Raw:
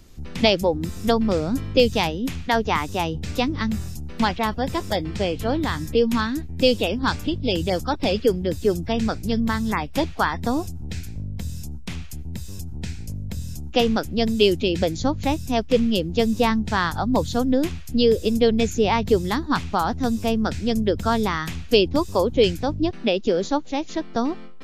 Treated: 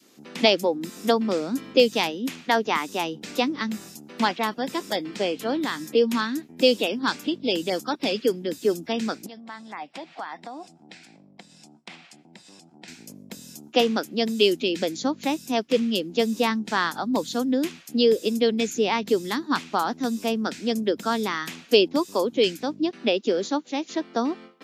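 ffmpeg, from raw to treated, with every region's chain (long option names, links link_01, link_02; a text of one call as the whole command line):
ffmpeg -i in.wav -filter_complex "[0:a]asettb=1/sr,asplit=3[link_01][link_02][link_03];[link_01]atrim=end=9.264[link_04];[link_02]atrim=start=9.26:end=12.88,asetpts=PTS-STARTPTS,afade=type=in:duration=0.004:curve=qsin,afade=type=out:start_time=3.616:duration=0.004:curve=qsin,acompressor=threshold=-31dB:ratio=8:attack=3.2:release=140:knee=1:detection=peak,highpass=140,equalizer=frequency=240:width_type=q:width=4:gain=-6,equalizer=frequency=430:width_type=q:width=4:gain=-7,equalizer=frequency=750:width_type=q:width=4:gain=8,equalizer=frequency=2100:width_type=q:width=4:gain=3,equalizer=frequency=6400:width_type=q:width=4:gain=-9,lowpass=frequency=7700:width=0.5412,lowpass=frequency=7700:width=1.3066[link_05];[link_03]atrim=start=12.876[link_06];[link_04][link_05]acrossfade=duration=0.004:curve1=hsin:curve2=qsin[link_07];[link_07][link_06]acrossfade=duration=0.004:curve1=qsin:curve2=hsin,highpass=frequency=230:width=0.5412,highpass=frequency=230:width=1.3066,adynamicequalizer=threshold=0.02:dfrequency=690:dqfactor=0.88:tfrequency=690:tqfactor=0.88:attack=5:release=100:ratio=0.375:range=4:mode=cutabove:tftype=bell" out.wav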